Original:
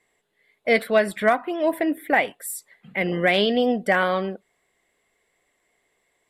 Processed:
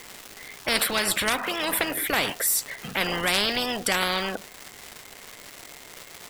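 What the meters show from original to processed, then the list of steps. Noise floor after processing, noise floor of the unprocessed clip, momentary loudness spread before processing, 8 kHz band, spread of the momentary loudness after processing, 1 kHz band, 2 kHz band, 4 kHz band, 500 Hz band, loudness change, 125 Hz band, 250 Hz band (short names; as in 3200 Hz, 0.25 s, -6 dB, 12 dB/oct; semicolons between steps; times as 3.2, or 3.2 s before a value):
-46 dBFS, -71 dBFS, 13 LU, +11.5 dB, 20 LU, -4.0 dB, -2.0 dB, +5.5 dB, -9.5 dB, -2.0 dB, -4.5 dB, -8.0 dB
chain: crackle 540/s -48 dBFS; spectral compressor 4:1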